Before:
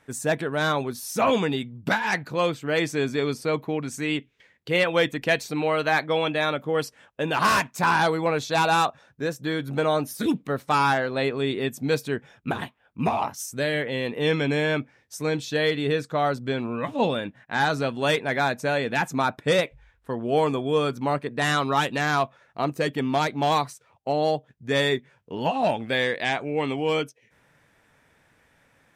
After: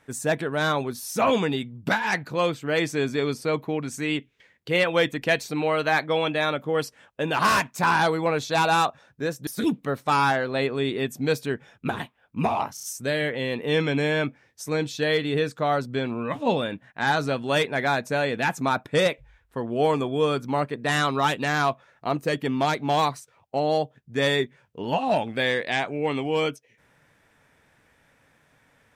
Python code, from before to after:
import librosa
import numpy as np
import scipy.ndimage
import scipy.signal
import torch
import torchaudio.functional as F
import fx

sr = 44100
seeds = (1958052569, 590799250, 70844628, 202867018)

y = fx.edit(x, sr, fx.cut(start_s=9.47, length_s=0.62),
    fx.stutter(start_s=13.36, slice_s=0.03, count=4), tone=tone)